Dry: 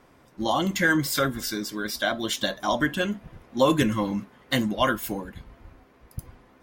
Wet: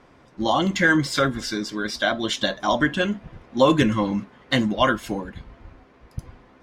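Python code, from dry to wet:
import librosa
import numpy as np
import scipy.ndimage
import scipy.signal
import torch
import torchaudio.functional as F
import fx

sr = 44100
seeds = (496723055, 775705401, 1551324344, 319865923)

y = scipy.signal.sosfilt(scipy.signal.butter(2, 6000.0, 'lowpass', fs=sr, output='sos'), x)
y = F.gain(torch.from_numpy(y), 3.5).numpy()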